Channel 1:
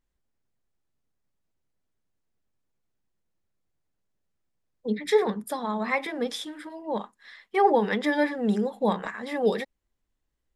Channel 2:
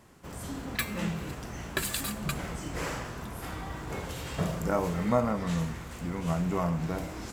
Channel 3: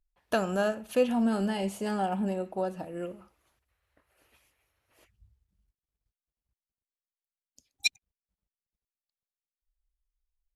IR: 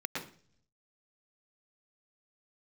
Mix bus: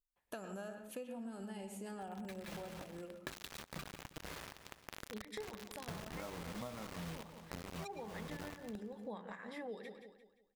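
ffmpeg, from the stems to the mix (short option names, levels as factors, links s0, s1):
-filter_complex "[0:a]adelay=250,volume=0.211,asplit=3[s0][s1][s2];[s1]volume=0.0841[s3];[s2]volume=0.2[s4];[1:a]lowpass=f=4300:w=0.5412,lowpass=f=4300:w=1.3066,acrusher=bits=4:mix=0:aa=0.000001,adelay=1500,volume=0.708,asplit=2[s5][s6];[s6]volume=0.133[s7];[2:a]aexciter=amount=1.5:drive=8:freq=7100,volume=0.178,asplit=3[s8][s9][s10];[s9]volume=0.355[s11];[s10]apad=whole_len=389142[s12];[s5][s12]sidechaincompress=threshold=0.00126:ratio=6:attack=7.4:release=322[s13];[3:a]atrim=start_sample=2205[s14];[s3][s11]amix=inputs=2:normalize=0[s15];[s15][s14]afir=irnorm=-1:irlink=0[s16];[s4][s7]amix=inputs=2:normalize=0,aecho=0:1:174|348|522|696|870:1|0.37|0.137|0.0507|0.0187[s17];[s0][s13][s8][s16][s17]amix=inputs=5:normalize=0,acompressor=threshold=0.00794:ratio=12"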